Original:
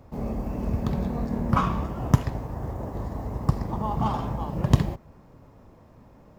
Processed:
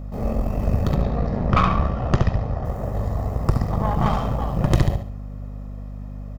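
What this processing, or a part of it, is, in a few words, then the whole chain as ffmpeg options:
valve amplifier with mains hum: -filter_complex "[0:a]asettb=1/sr,asplit=3[a][b][c];[a]atrim=end=0.954[d];[b]atrim=start=0.95:end=2.65,asetpts=PTS-STARTPTS,afade=t=in:d=0.004:c=qsin,afade=t=out:st=1.696:d=0.004:c=qsin,lowpass=f=5.4k:w=0.5412,lowpass=f=5.4k:w=1.3066[e];[c]atrim=start=2.646[f];[d][e]acrossfade=d=0.004:c1=hsin:c2=qsin[g];[g][f]acrossfade=d=0.004:c1=qsin:c2=hsin,aecho=1:1:1.6:0.51,aecho=1:1:71|142|213|284:0.422|0.143|0.0487|0.0166,aeval=exprs='(tanh(7.94*val(0)+0.7)-tanh(0.7))/7.94':c=same,aeval=exprs='val(0)+0.0112*(sin(2*PI*50*n/s)+sin(2*PI*2*50*n/s)/2+sin(2*PI*3*50*n/s)/3+sin(2*PI*4*50*n/s)/4+sin(2*PI*5*50*n/s)/5)':c=same,volume=7.5dB"

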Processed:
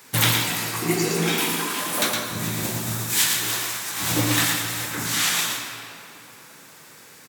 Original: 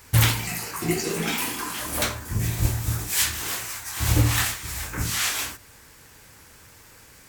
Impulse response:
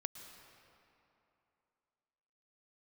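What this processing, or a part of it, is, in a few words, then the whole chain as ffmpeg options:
PA in a hall: -filter_complex "[0:a]highpass=f=150:w=0.5412,highpass=f=150:w=1.3066,equalizer=f=3.7k:t=o:w=0.2:g=4.5,aecho=1:1:113:0.596[a];[1:a]atrim=start_sample=2205[b];[a][b]afir=irnorm=-1:irlink=0,volume=4.5dB"

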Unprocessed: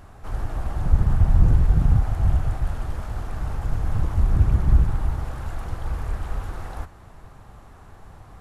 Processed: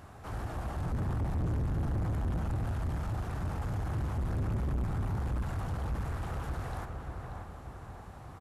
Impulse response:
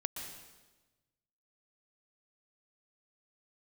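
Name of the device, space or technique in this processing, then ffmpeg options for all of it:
saturation between pre-emphasis and de-emphasis: -filter_complex "[0:a]highpass=71,highshelf=f=2.3k:g=10,asplit=2[a][b];[b]adelay=585,lowpass=f=1.7k:p=1,volume=-5dB,asplit=2[c][d];[d]adelay=585,lowpass=f=1.7k:p=1,volume=0.48,asplit=2[e][f];[f]adelay=585,lowpass=f=1.7k:p=1,volume=0.48,asplit=2[g][h];[h]adelay=585,lowpass=f=1.7k:p=1,volume=0.48,asplit=2[i][j];[j]adelay=585,lowpass=f=1.7k:p=1,volume=0.48,asplit=2[k][l];[l]adelay=585,lowpass=f=1.7k:p=1,volume=0.48[m];[a][c][e][g][i][k][m]amix=inputs=7:normalize=0,asoftclip=type=tanh:threshold=-26.5dB,highshelf=f=2.3k:g=-10,volume=-2dB"

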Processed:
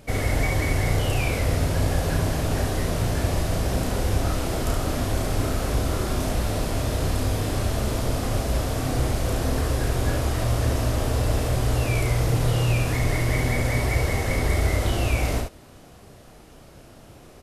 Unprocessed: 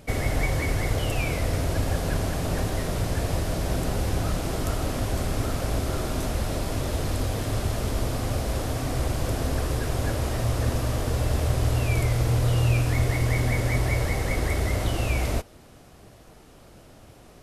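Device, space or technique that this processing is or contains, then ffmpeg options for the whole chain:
slapback doubling: -filter_complex "[0:a]asplit=3[a][b][c];[b]adelay=32,volume=-4dB[d];[c]adelay=70,volume=-4.5dB[e];[a][d][e]amix=inputs=3:normalize=0"

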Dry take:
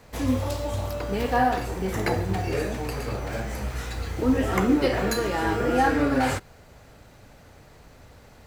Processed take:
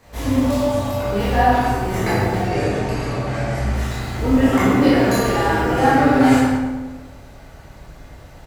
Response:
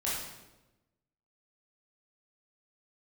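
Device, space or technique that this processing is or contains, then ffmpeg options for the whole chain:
bathroom: -filter_complex "[0:a]asettb=1/sr,asplit=3[a][b][c];[a]atrim=end=2.404[d];[b]atrim=start=2.4:end=3.73,asetpts=PTS-STARTPTS,afade=t=in:d=0.004:c=qsin,afade=t=out:st=1.326:d=0.004:c=qsin,lowpass=8.6k[e];[c]atrim=start=3.726[f];[d][e]acrossfade=d=0.004:c1=hsin:c2=qsin[g];[g][f]acrossfade=d=0.004:c1=qsin:c2=hsin[h];[1:a]atrim=start_sample=2205[i];[h][i]afir=irnorm=-1:irlink=0,asplit=2[j][k];[k]adelay=108,lowpass=f=1.9k:p=1,volume=-4dB,asplit=2[l][m];[m]adelay=108,lowpass=f=1.9k:p=1,volume=0.53,asplit=2[n][o];[o]adelay=108,lowpass=f=1.9k:p=1,volume=0.53,asplit=2[p][q];[q]adelay=108,lowpass=f=1.9k:p=1,volume=0.53,asplit=2[r][s];[s]adelay=108,lowpass=f=1.9k:p=1,volume=0.53,asplit=2[t][u];[u]adelay=108,lowpass=f=1.9k:p=1,volume=0.53,asplit=2[v][w];[w]adelay=108,lowpass=f=1.9k:p=1,volume=0.53[x];[j][l][n][p][r][t][v][x]amix=inputs=8:normalize=0"

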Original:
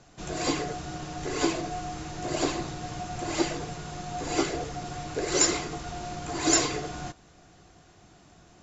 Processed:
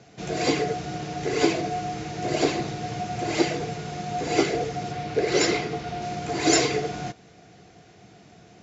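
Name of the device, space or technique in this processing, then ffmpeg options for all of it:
car door speaker: -filter_complex "[0:a]highpass=96,equalizer=f=120:t=q:w=4:g=5,equalizer=f=200:t=q:w=4:g=5,equalizer=f=450:t=q:w=4:g=9,equalizer=f=700:t=q:w=4:g=7,equalizer=f=1.1k:t=q:w=4:g=-4,equalizer=f=2.2k:t=q:w=4:g=5,lowpass=f=6.5k:w=0.5412,lowpass=f=6.5k:w=1.3066,asettb=1/sr,asplit=3[a][b][c];[a]atrim=end=4.924[d];[b]atrim=start=4.92:end=6.02,asetpts=PTS-STARTPTS,afade=t=in:d=0.004:c=qsin,afade=t=out:st=1.096:d=0.004:c=qsin,lowpass=5.4k[e];[c]atrim=start=6.016[f];[d][e]acrossfade=d=0.004:c1=hsin:c2=qsin[g];[g][f]acrossfade=d=0.004:c1=qsin:c2=hsin,equalizer=f=690:w=0.9:g=-4.5,volume=3.5dB"

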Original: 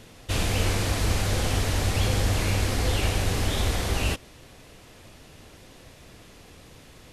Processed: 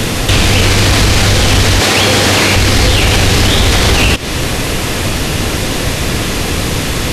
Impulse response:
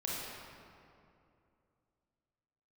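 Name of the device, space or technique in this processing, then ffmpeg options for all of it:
mastering chain: -filter_complex "[0:a]asettb=1/sr,asplit=3[a][b][c];[a]atrim=end=1.804[d];[b]atrim=start=1.8:end=2.56,asetpts=PTS-STARTPTS,afade=t=in:d=0.004:c=qsin,afade=t=out:st=0.756:d=0.004:c=qsin,highpass=260[e];[c]atrim=start=2.556[f];[d][e]acrossfade=d=0.004:c1=hsin:c2=qsin[g];[g][f]acrossfade=d=0.004:c1=qsin:c2=hsin,equalizer=f=640:t=o:w=1:g=-3,acrossover=split=120|2300|6300[h][i][j][k];[h]acompressor=threshold=-38dB:ratio=4[l];[i]acompressor=threshold=-39dB:ratio=4[m];[j]acompressor=threshold=-41dB:ratio=4[n];[k]acompressor=threshold=-53dB:ratio=4[o];[l][m][n][o]amix=inputs=4:normalize=0,acompressor=threshold=-38dB:ratio=2,asoftclip=type=tanh:threshold=-30.5dB,alimiter=level_in=35.5dB:limit=-1dB:release=50:level=0:latency=1,volume=-1dB"

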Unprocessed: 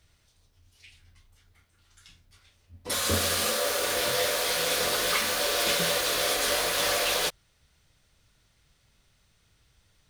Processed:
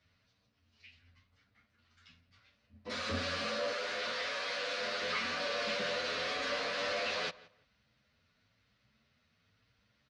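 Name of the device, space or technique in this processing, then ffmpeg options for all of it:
barber-pole flanger into a guitar amplifier: -filter_complex "[0:a]asplit=2[a][b];[b]adelay=9.1,afreqshift=0.96[c];[a][c]amix=inputs=2:normalize=1,asoftclip=type=tanh:threshold=-27dB,highpass=110,equalizer=f=150:t=q:w=4:g=-5,equalizer=f=230:t=q:w=4:g=7,equalizer=f=360:t=q:w=4:g=-10,equalizer=f=850:t=q:w=4:g=-6,equalizer=f=3.4k:t=q:w=4:g=-6,lowpass=f=4.5k:w=0.5412,lowpass=f=4.5k:w=1.3066,asettb=1/sr,asplit=3[d][e][f];[d]atrim=end=3.734[g];[e]atrim=start=3.73:end=5.02,asetpts=PTS-STARTPTS,afade=t=in:d=0.004:c=qsin,afade=t=out:st=1.286:d=0.004:c=qsin,lowshelf=f=370:g=-9[h];[f]atrim=start=5.016[i];[g][h]acrossfade=d=0.004:c1=hsin:c2=qsin[j];[j][i]acrossfade=d=0.004:c1=qsin:c2=hsin,asplit=2[k][l];[l]adelay=171,lowpass=f=3.1k:p=1,volume=-20dB,asplit=2[m][n];[n]adelay=171,lowpass=f=3.1k:p=1,volume=0.22[o];[k][m][o]amix=inputs=3:normalize=0"

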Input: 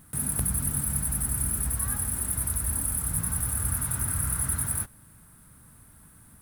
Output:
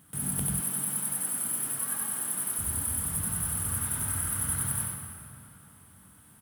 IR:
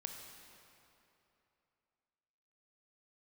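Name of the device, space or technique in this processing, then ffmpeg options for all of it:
PA in a hall: -filter_complex "[0:a]highpass=100,equalizer=f=3.1k:t=o:w=0.27:g=8,aecho=1:1:91:0.631[a];[1:a]atrim=start_sample=2205[b];[a][b]afir=irnorm=-1:irlink=0,asettb=1/sr,asplit=3[c][d][e];[c]atrim=end=0.604[f];[d]atrim=start=0.6:end=2.59,asetpts=PTS-STARTPTS,afade=t=in:d=0.004:c=qsin,afade=t=out:st=1.986:d=0.004:c=qsin,highpass=270[g];[e]atrim=start=2.586[h];[f][g]acrossfade=d=0.004:c1=hsin:c2=qsin[i];[i][h]acrossfade=d=0.004:c1=qsin:c2=hsin"

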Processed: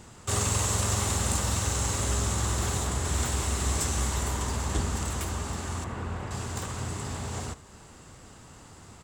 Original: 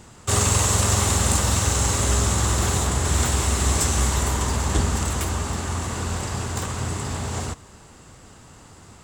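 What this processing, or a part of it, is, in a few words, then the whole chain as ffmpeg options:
parallel compression: -filter_complex "[0:a]asplit=2[a][b];[b]acompressor=threshold=-38dB:ratio=6,volume=-1.5dB[c];[a][c]amix=inputs=2:normalize=0,asettb=1/sr,asplit=3[d][e][f];[d]atrim=end=5.844[g];[e]atrim=start=5.84:end=6.31,asetpts=PTS-STARTPTS,afade=t=in:d=0.004:c=qsin,afade=t=out:st=0.466:d=0.004:c=qsin,acrossover=split=2800[h][i];[i]acompressor=threshold=-50dB:ratio=4:attack=1:release=60[j];[h][j]amix=inputs=2:normalize=0[k];[f]atrim=start=6.306[l];[g][k]acrossfade=d=0.004:c1=hsin:c2=qsin[m];[m][l]acrossfade=d=0.004:c1=qsin:c2=hsin,aecho=1:1:74:0.126,volume=-8dB"

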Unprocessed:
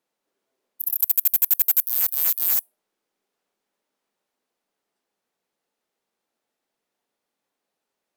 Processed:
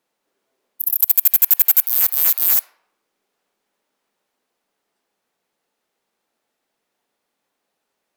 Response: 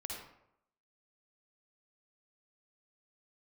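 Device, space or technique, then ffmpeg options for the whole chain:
filtered reverb send: -filter_complex "[0:a]asplit=2[a][b];[b]highpass=600,lowpass=4.1k[c];[1:a]atrim=start_sample=2205[d];[c][d]afir=irnorm=-1:irlink=0,volume=-12dB[e];[a][e]amix=inputs=2:normalize=0,volume=5.5dB"

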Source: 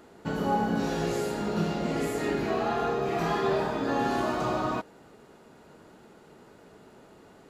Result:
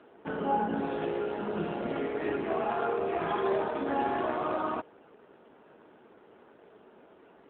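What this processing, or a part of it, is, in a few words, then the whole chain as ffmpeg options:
telephone: -af "highpass=260,lowpass=3.6k" -ar 8000 -c:a libopencore_amrnb -b:a 7400

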